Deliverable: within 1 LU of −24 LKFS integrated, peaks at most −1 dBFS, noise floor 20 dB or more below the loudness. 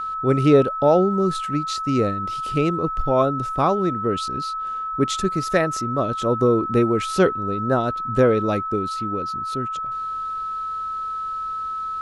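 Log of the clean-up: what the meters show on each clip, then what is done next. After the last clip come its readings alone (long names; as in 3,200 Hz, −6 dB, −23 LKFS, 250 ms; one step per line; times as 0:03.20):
interfering tone 1,300 Hz; level of the tone −25 dBFS; integrated loudness −22.0 LKFS; sample peak −3.0 dBFS; target loudness −24.0 LKFS
→ notch filter 1,300 Hz, Q 30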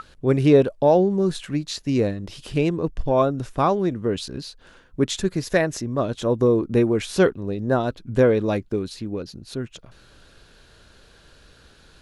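interfering tone none found; integrated loudness −22.0 LKFS; sample peak −4.0 dBFS; target loudness −24.0 LKFS
→ level −2 dB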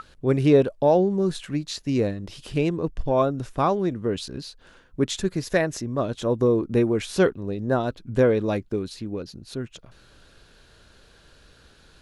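integrated loudness −24.0 LKFS; sample peak −6.0 dBFS; background noise floor −55 dBFS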